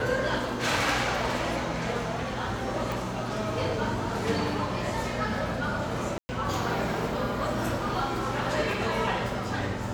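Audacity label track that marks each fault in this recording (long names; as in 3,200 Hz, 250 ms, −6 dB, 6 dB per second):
2.920000	2.920000	click
6.180000	6.290000	drop-out 110 ms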